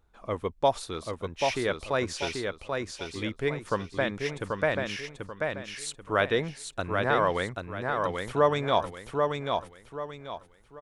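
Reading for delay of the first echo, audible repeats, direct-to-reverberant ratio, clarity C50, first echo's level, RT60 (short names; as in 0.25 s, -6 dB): 0.786 s, 4, none, none, -4.0 dB, none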